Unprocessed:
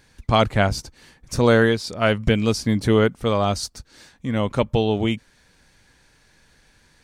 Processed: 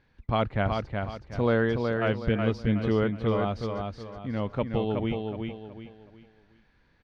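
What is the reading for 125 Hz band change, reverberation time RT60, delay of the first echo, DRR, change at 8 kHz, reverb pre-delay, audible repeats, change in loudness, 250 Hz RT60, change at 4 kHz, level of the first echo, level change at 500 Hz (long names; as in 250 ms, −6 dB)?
−5.5 dB, no reverb audible, 370 ms, no reverb audible, below −25 dB, no reverb audible, 4, −7.5 dB, no reverb audible, −13.0 dB, −4.5 dB, −7.0 dB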